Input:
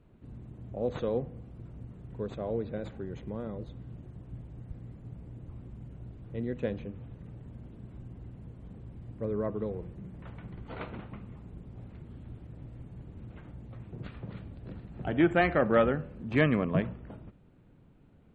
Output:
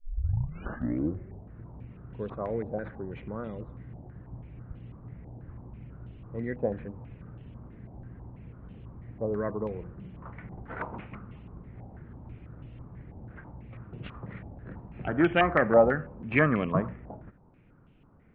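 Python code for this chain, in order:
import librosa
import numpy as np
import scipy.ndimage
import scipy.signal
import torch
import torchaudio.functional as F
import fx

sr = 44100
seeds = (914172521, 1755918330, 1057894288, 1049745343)

y = fx.tape_start_head(x, sr, length_s=1.65)
y = fx.air_absorb(y, sr, metres=71.0)
y = fx.filter_held_lowpass(y, sr, hz=6.1, low_hz=790.0, high_hz=2900.0)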